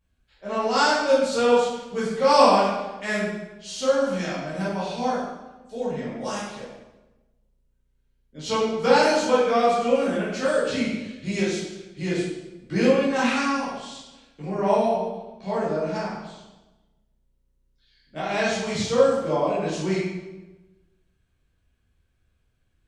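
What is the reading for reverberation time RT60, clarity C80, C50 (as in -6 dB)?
1.1 s, 3.0 dB, 0.0 dB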